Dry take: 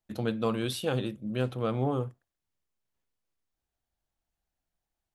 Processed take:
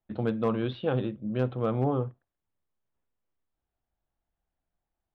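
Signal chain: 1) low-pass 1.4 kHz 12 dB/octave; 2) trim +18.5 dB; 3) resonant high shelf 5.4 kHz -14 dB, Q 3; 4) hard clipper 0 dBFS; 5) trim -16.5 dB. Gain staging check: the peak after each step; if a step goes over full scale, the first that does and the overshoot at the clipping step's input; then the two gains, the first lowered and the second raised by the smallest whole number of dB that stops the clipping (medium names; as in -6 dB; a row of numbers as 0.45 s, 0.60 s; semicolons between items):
-16.0 dBFS, +2.5 dBFS, +3.0 dBFS, 0.0 dBFS, -16.5 dBFS; step 2, 3.0 dB; step 2 +15.5 dB, step 5 -13.5 dB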